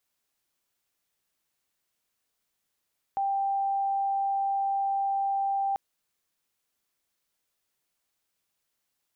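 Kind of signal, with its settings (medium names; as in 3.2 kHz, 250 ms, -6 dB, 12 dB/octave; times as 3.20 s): tone sine 788 Hz -24.5 dBFS 2.59 s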